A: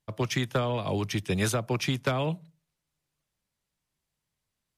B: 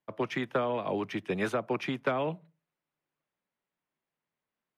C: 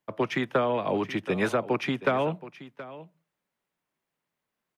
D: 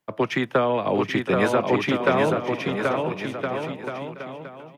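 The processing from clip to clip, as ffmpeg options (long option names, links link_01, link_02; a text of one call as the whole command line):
ffmpeg -i in.wav -filter_complex "[0:a]acrossover=split=190 2700:gain=0.0891 1 0.112[link_01][link_02][link_03];[link_01][link_02][link_03]amix=inputs=3:normalize=0" out.wav
ffmpeg -i in.wav -af "aecho=1:1:724:0.15,volume=4.5dB" out.wav
ffmpeg -i in.wav -af "aecho=1:1:780|1365|1804|2133|2380:0.631|0.398|0.251|0.158|0.1,volume=4dB" out.wav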